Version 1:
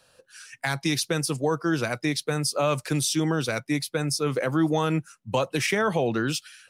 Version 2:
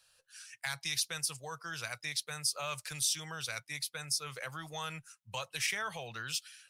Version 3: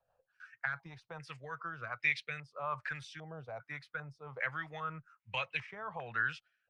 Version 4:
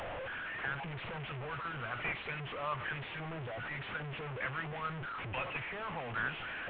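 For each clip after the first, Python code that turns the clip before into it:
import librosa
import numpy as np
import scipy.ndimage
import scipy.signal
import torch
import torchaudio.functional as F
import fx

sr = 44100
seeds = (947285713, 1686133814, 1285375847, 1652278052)

y1 = fx.tone_stack(x, sr, knobs='10-0-10')
y1 = F.gain(torch.from_numpy(y1), -3.5).numpy()
y2 = fx.rotary_switch(y1, sr, hz=6.0, then_hz=1.2, switch_at_s=1.02)
y2 = fx.filter_held_lowpass(y2, sr, hz=2.5, low_hz=750.0, high_hz=2300.0)
y3 = fx.delta_mod(y2, sr, bps=16000, step_db=-35.0)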